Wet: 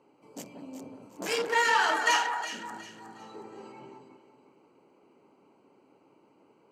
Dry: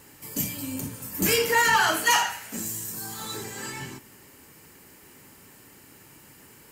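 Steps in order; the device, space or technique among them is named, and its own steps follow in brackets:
adaptive Wiener filter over 25 samples
0:01.44–0:02.35: high-pass filter 210 Hz 24 dB per octave
public-address speaker with an overloaded transformer (saturating transformer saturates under 1,500 Hz; band-pass filter 340–6,300 Hz)
delay that swaps between a low-pass and a high-pass 182 ms, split 1,700 Hz, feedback 56%, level −5 dB
level −2.5 dB

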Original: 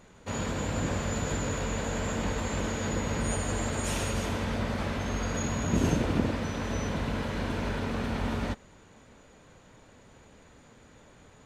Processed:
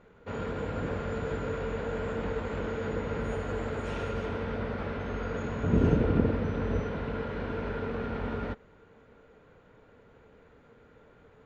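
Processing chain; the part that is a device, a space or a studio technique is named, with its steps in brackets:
0:05.63–0:06.82: low-shelf EQ 340 Hz +7.5 dB
inside a cardboard box (low-pass filter 2,600 Hz 12 dB per octave; hollow resonant body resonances 450/1,400 Hz, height 10 dB)
level −4 dB

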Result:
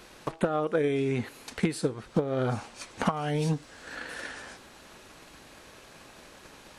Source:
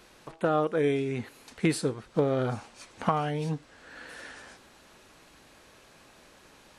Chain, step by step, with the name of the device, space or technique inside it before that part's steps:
drum-bus smash (transient designer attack +8 dB, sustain 0 dB; downward compressor 10 to 1, threshold −26 dBFS, peak gain reduction 14.5 dB; soft clipping −16.5 dBFS, distortion −22 dB)
0:03.05–0:03.96: bass and treble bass 0 dB, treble +5 dB
level +4.5 dB

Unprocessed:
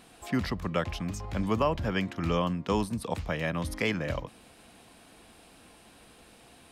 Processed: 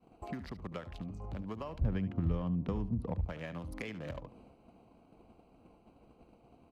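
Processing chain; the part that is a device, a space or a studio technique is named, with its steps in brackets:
adaptive Wiener filter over 25 samples
downward expander −53 dBFS
drum-bus smash (transient designer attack +6 dB, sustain +2 dB; downward compressor 10 to 1, threshold −37 dBFS, peak gain reduction 18.5 dB; soft clipping −30 dBFS, distortion −19 dB)
0:01.81–0:03.25: RIAA equalisation playback
single-tap delay 73 ms −14.5 dB

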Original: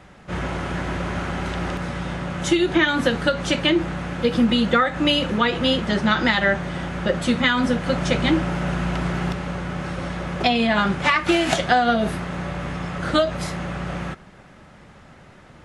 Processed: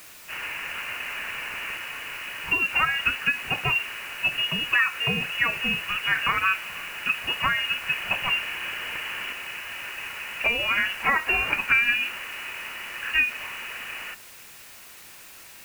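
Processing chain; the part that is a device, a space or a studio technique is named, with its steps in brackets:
scrambled radio voice (band-pass filter 350–2,600 Hz; voice inversion scrambler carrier 3,100 Hz; white noise bed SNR 19 dB)
level −2.5 dB

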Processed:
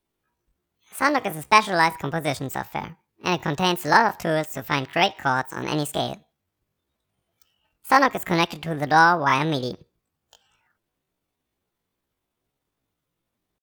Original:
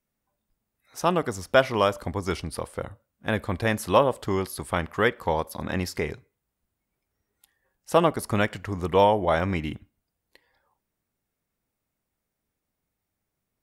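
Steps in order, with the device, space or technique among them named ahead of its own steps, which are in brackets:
chipmunk voice (pitch shifter +8.5 semitones)
level +3 dB

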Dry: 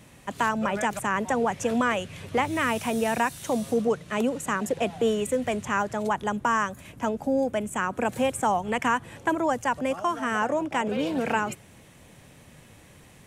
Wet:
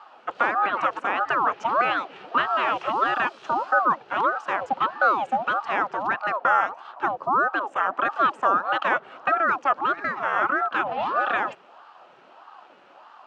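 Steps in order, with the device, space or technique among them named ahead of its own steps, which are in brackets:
voice changer toy (ring modulator whose carrier an LFO sweeps 650 Hz, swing 60%, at 1.6 Hz; loudspeaker in its box 430–3,800 Hz, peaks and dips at 450 Hz −7 dB, 790 Hz +3 dB, 1,300 Hz +6 dB, 2,100 Hz −9 dB, 3,600 Hz −7 dB)
level +5.5 dB

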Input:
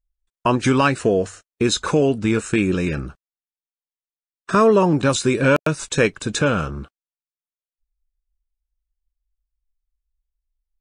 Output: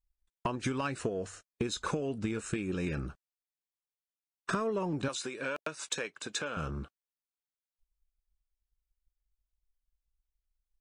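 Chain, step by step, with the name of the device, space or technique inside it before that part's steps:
drum-bus smash (transient designer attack +7 dB, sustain +1 dB; downward compressor 10 to 1, threshold −21 dBFS, peak gain reduction 14.5 dB; soft clipping −13 dBFS, distortion −21 dB)
0:05.08–0:06.57: meter weighting curve A
level −7.5 dB

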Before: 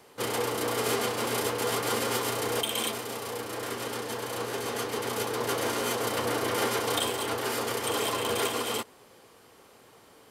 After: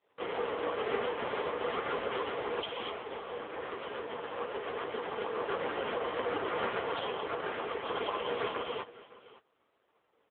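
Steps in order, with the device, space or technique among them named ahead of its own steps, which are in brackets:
high-pass filter 130 Hz 24 dB per octave
downward expander −46 dBFS
satellite phone (band-pass filter 340–3,000 Hz; single-tap delay 561 ms −19 dB; AMR narrowband 5.9 kbit/s 8,000 Hz)

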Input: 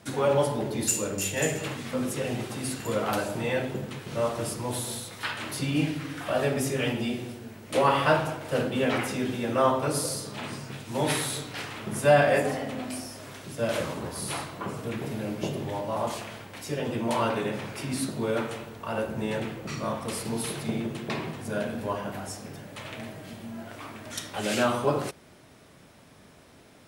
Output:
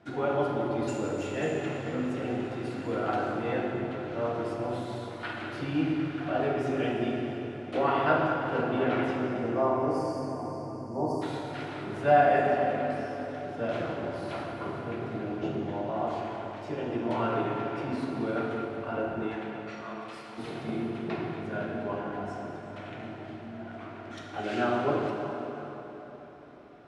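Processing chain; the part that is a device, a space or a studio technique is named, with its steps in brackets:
0:19.28–0:20.37: high-pass filter 660 Hz → 1,500 Hz 12 dB per octave
inside a cardboard box (low-pass filter 3,200 Hz 12 dB per octave; hollow resonant body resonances 340/710/1,400 Hz, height 9 dB, ringing for 30 ms)
0:09.16–0:11.22: time-frequency box erased 1,200–4,400 Hz
dense smooth reverb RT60 4.1 s, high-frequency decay 0.75×, pre-delay 0 ms, DRR 0 dB
level −7.5 dB

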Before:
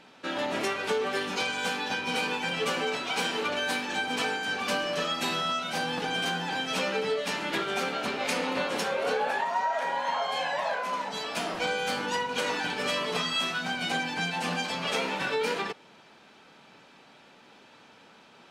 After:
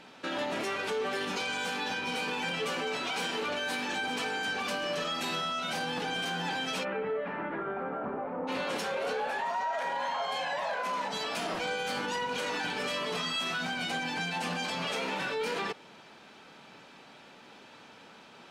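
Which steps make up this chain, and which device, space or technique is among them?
soft clipper into limiter (soft clipping −18.5 dBFS, distortion −25 dB; brickwall limiter −27.5 dBFS, peak gain reduction 7.5 dB)
0:06.83–0:08.47: low-pass filter 2,300 Hz → 1,100 Hz 24 dB per octave
level +2 dB

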